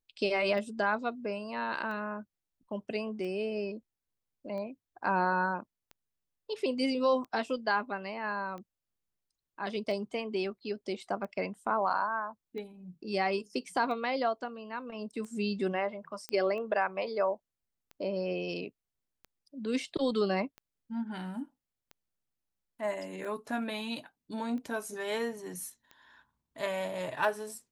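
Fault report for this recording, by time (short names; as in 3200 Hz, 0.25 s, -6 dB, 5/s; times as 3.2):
tick 45 rpm -32 dBFS
16.29 pop -20 dBFS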